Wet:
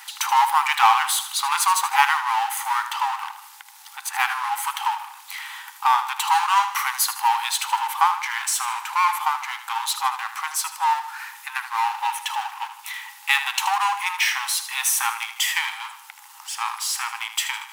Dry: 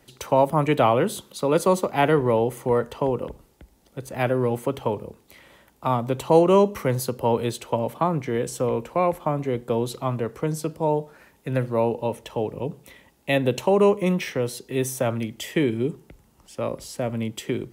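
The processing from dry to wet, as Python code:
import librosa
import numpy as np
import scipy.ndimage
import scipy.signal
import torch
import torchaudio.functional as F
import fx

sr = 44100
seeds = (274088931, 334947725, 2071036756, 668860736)

y = fx.power_curve(x, sr, exponent=0.7)
y = fx.brickwall_highpass(y, sr, low_hz=770.0)
y = fx.echo_feedback(y, sr, ms=78, feedback_pct=46, wet_db=-11.5)
y = F.gain(torch.from_numpy(y), 4.0).numpy()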